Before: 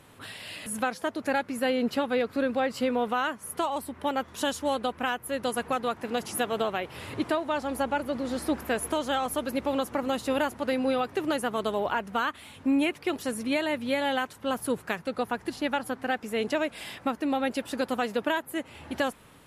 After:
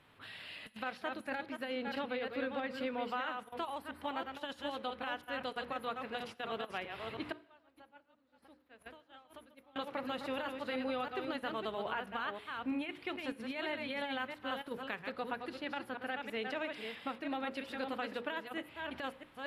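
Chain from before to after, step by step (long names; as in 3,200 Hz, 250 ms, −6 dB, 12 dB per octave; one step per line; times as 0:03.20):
delay that plays each chunk backwards 326 ms, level −6 dB
first-order pre-emphasis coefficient 0.9
0:07.32–0:09.76: downward expander −26 dBFS
mains-hum notches 60/120/180/240/300/360/420/480/540 Hz
compressor whose output falls as the input rises −41 dBFS, ratio −0.5
high-frequency loss of the air 410 metres
convolution reverb, pre-delay 3 ms, DRR 18 dB
level +7 dB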